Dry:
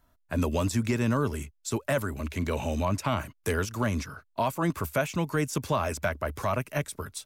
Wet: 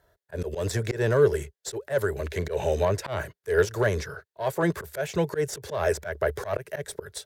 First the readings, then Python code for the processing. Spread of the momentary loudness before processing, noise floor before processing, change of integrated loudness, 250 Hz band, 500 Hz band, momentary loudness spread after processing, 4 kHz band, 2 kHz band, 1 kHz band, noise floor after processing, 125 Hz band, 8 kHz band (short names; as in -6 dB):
6 LU, -69 dBFS, +2.0 dB, -4.0 dB, +6.0 dB, 12 LU, 0.0 dB, +1.5 dB, -2.5 dB, under -85 dBFS, -0.5 dB, -0.5 dB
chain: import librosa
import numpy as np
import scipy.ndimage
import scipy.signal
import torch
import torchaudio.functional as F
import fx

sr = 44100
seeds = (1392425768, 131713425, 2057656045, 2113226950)

y = fx.high_shelf(x, sr, hz=2400.0, db=9.0)
y = fx.cheby_harmonics(y, sr, harmonics=(4,), levels_db=(-21,), full_scale_db=-9.5)
y = np.clip(10.0 ** (17.0 / 20.0) * y, -1.0, 1.0) / 10.0 ** (17.0 / 20.0)
y = fx.curve_eq(y, sr, hz=(170.0, 250.0, 410.0, 1200.0, 1700.0, 2500.0, 3700.0, 6200.0, 11000.0), db=(0, -16, 13, -6, 5, -9, -4, -9, -11))
y = fx.auto_swell(y, sr, attack_ms=132.0)
y = scipy.signal.sosfilt(scipy.signal.butter(2, 45.0, 'highpass', fs=sr, output='sos'), y)
y = F.gain(torch.from_numpy(y), 1.5).numpy()